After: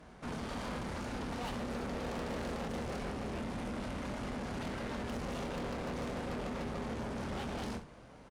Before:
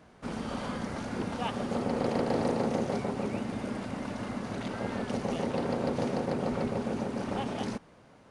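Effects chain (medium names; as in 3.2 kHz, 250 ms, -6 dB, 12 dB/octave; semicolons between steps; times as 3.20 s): octave divider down 2 oct, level -3 dB; valve stage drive 41 dB, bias 0.55; early reflections 25 ms -8 dB, 65 ms -12 dB; trim +3 dB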